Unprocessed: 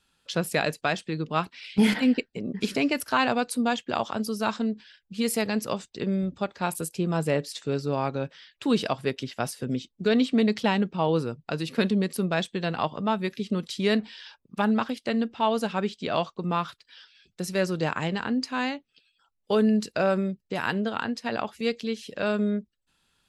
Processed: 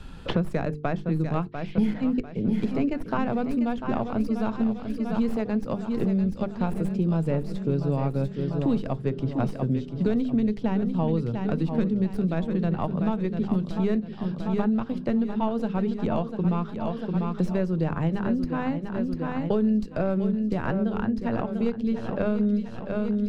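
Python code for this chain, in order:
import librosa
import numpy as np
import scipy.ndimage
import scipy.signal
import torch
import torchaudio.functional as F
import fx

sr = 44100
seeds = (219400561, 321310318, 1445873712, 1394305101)

p1 = fx.tracing_dist(x, sr, depth_ms=0.1)
p2 = fx.tilt_eq(p1, sr, slope=-4.5)
p3 = fx.hum_notches(p2, sr, base_hz=50, count=9)
p4 = p3 + fx.echo_feedback(p3, sr, ms=695, feedback_pct=52, wet_db=-10, dry=0)
p5 = fx.band_squash(p4, sr, depth_pct=100)
y = p5 * 10.0 ** (-7.5 / 20.0)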